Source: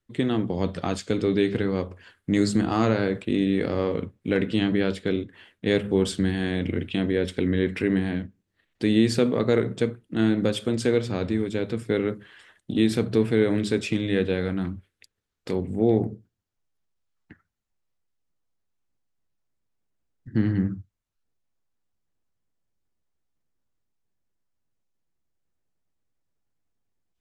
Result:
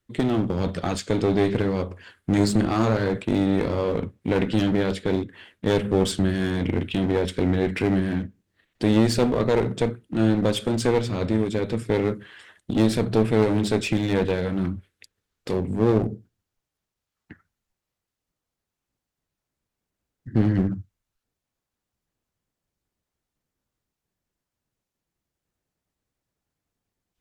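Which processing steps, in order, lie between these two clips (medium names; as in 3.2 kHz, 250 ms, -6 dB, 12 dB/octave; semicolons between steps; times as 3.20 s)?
one-sided clip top -27.5 dBFS; trim +4 dB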